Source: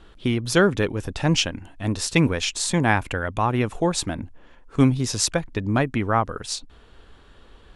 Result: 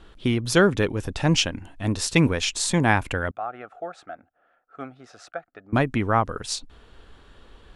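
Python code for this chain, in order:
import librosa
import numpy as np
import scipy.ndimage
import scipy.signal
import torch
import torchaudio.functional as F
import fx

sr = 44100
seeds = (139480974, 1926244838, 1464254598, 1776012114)

y = fx.double_bandpass(x, sr, hz=980.0, octaves=0.88, at=(3.31, 5.73))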